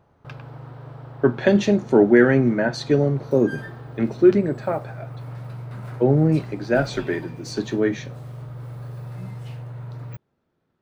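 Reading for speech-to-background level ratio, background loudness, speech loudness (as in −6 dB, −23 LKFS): 16.5 dB, −37.0 LKFS, −20.5 LKFS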